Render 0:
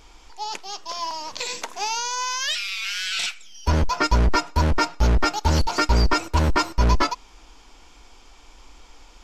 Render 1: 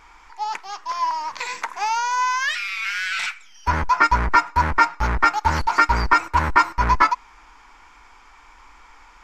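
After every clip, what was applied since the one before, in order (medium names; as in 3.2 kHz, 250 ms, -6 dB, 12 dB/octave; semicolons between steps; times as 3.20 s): high-order bell 1.4 kHz +13.5 dB; trim -5.5 dB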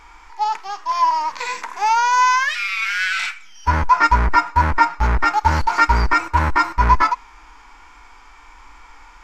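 harmonic-percussive split percussive -11 dB; trim +6.5 dB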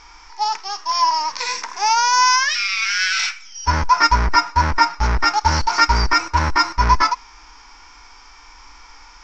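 resonant low-pass 5.5 kHz, resonance Q 6.7; trim -1 dB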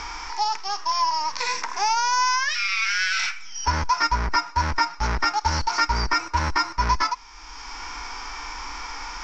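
three bands compressed up and down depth 70%; trim -6 dB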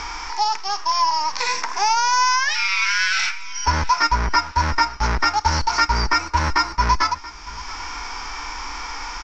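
feedback delay 680 ms, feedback 37%, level -18.5 dB; trim +3.5 dB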